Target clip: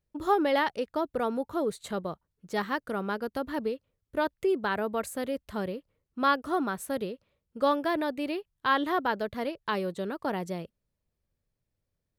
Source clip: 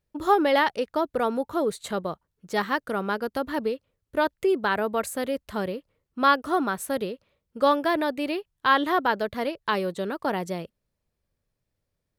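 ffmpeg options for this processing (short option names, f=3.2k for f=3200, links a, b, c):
-af "lowshelf=f=340:g=4,volume=-5.5dB"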